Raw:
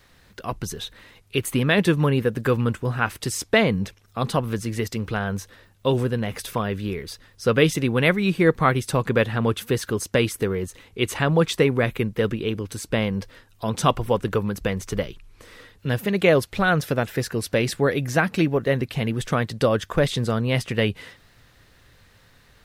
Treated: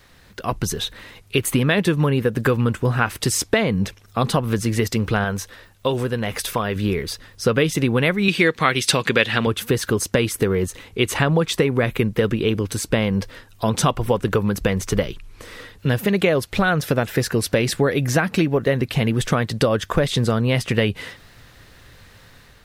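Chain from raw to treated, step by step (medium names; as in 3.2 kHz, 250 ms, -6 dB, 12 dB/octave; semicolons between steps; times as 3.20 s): compression 6:1, threshold -22 dBFS, peak gain reduction 10.5 dB; 8.28–9.47 s: frequency weighting D; level rider gain up to 3.5 dB; 5.24–6.76 s: peaking EQ 150 Hz -5.5 dB 3 oct; trim +4 dB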